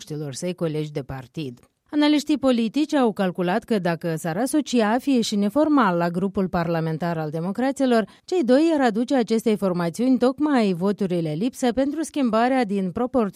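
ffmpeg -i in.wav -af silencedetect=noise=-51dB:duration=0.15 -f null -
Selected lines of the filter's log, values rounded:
silence_start: 1.66
silence_end: 1.89 | silence_duration: 0.23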